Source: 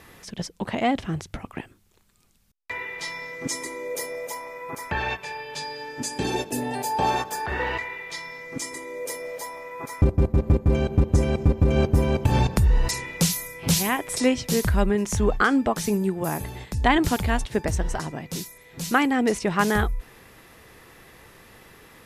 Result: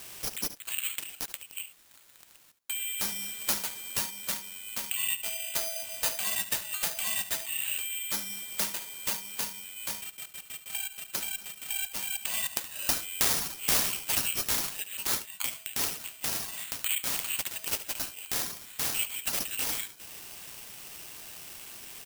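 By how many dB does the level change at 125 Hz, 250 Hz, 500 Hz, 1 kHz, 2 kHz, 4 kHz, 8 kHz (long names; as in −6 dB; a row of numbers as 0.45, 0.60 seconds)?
−26.5, −23.0, −19.5, −15.5, −8.0, +0.5, +1.5 decibels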